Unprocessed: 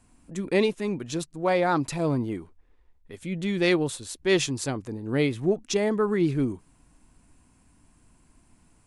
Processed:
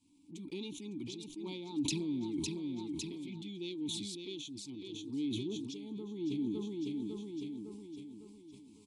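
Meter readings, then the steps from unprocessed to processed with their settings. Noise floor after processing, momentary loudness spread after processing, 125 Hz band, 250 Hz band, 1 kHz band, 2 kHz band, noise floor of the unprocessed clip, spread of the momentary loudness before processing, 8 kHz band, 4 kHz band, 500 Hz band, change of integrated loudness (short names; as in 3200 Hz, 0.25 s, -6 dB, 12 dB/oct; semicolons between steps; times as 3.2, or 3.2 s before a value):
-57 dBFS, 12 LU, -15.0 dB, -9.0 dB, -25.5 dB, -22.0 dB, -62 dBFS, 10 LU, -9.0 dB, -7.5 dB, -19.0 dB, -13.5 dB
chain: envelope flanger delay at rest 11.7 ms, full sweep at -23.5 dBFS; bell 750 Hz -13 dB 0.31 oct; notch 2700 Hz, Q 28; in parallel at -3.5 dB: soft clip -22 dBFS, distortion -13 dB; on the sum: random-step tremolo 3.5 Hz; EQ curve 120 Hz 0 dB, 2000 Hz -16 dB, 3500 Hz +14 dB; on a send: feedback echo 0.555 s, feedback 47%, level -11 dB; on the sum: compressor 6:1, threshold -34 dBFS, peak gain reduction 20 dB; vowel filter u; sustainer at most 25 dB/s; gain +8 dB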